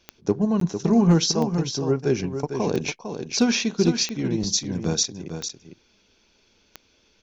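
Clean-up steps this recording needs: clip repair -9 dBFS; de-click; interpolate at 0.60 s, 13 ms; inverse comb 452 ms -8 dB

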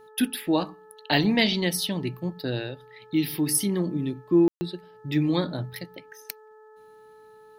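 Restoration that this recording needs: de-hum 432.9 Hz, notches 4; room tone fill 4.48–4.61 s

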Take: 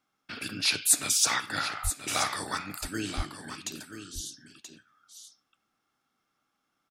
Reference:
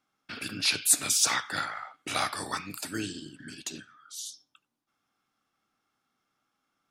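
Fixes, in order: 1.83–1.95 s: high-pass 140 Hz 24 dB/octave; 3.16–3.28 s: high-pass 140 Hz 24 dB/octave; inverse comb 980 ms -10 dB

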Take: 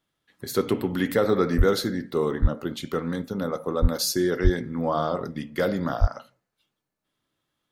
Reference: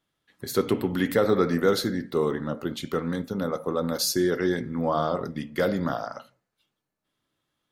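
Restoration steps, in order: de-plosive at 1.57/2.41/3.81/4.43/6.00 s

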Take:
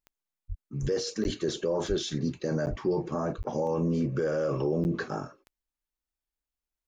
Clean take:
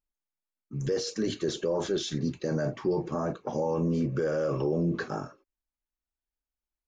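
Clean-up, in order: de-click; de-plosive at 0.48/0.81/1.24/1.88/2.69/3.37 s; interpolate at 1.24/2.66/3.43/4.84 s, 9.6 ms

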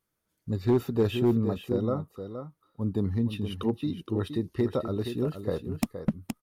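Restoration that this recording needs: clip repair -16.5 dBFS; inverse comb 469 ms -9 dB

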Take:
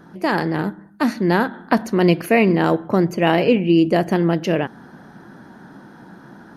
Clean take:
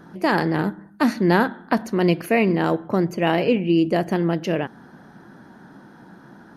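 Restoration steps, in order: trim 0 dB, from 1.53 s -3.5 dB

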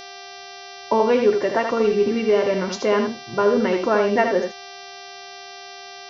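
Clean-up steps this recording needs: de-hum 393.4 Hz, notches 15; band-stop 710 Hz, Q 30; inverse comb 79 ms -6 dB

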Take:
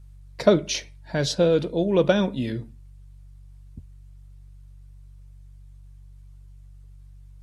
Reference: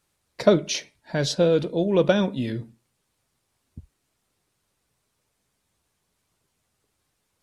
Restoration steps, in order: de-hum 47.7 Hz, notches 3

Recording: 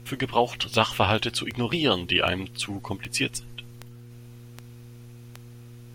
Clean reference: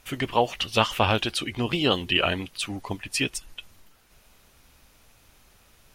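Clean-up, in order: de-click; de-hum 119.3 Hz, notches 4

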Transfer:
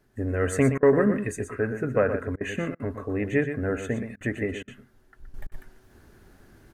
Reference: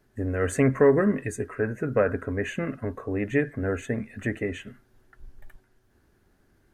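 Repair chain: interpolate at 0.78/2.36/2.75/4.16/4.63/5.47 s, 46 ms; inverse comb 121 ms -9 dB; gain correction -10 dB, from 5.34 s

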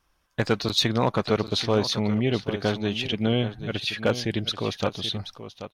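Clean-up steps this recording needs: clip repair -12 dBFS; inverse comb 782 ms -12 dB

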